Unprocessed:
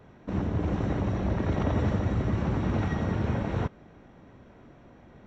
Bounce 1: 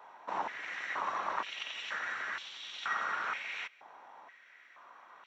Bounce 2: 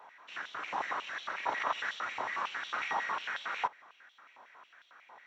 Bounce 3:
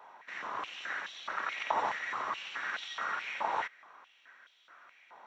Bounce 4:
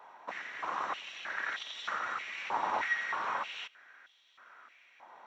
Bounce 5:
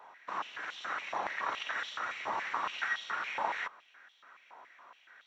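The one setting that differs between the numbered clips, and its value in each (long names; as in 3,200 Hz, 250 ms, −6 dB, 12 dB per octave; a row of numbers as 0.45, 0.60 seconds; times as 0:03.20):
high-pass on a step sequencer, speed: 2.1, 11, 4.7, 3.2, 7.1 Hertz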